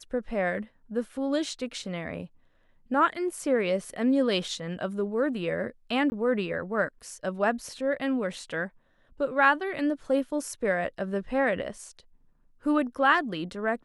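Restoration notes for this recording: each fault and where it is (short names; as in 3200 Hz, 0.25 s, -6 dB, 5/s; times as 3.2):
6.1–6.12 gap 20 ms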